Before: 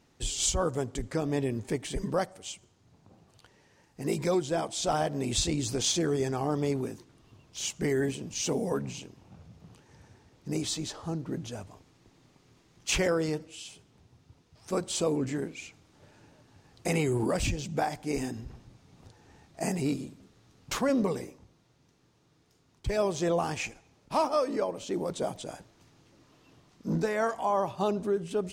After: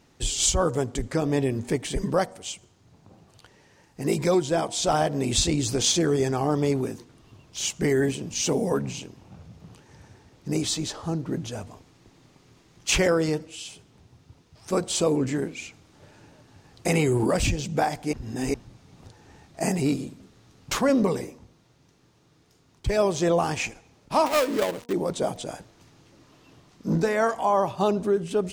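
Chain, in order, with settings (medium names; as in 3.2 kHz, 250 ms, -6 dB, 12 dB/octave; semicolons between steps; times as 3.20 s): 24.26–24.93 s: dead-time distortion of 0.22 ms; de-hum 238.6 Hz, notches 4; 18.13–18.54 s: reverse; trim +5.5 dB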